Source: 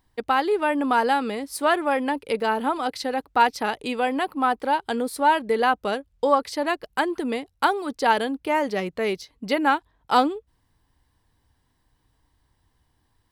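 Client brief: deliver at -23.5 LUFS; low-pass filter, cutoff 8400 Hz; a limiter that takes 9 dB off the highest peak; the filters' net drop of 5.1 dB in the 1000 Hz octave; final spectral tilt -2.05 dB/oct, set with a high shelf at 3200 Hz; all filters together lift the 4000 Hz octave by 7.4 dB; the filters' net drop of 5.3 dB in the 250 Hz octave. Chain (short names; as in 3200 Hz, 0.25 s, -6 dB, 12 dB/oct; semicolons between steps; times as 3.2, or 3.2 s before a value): LPF 8400 Hz; bell 250 Hz -6 dB; bell 1000 Hz -7 dB; high shelf 3200 Hz +5.5 dB; bell 4000 Hz +6.5 dB; gain +4.5 dB; limiter -11 dBFS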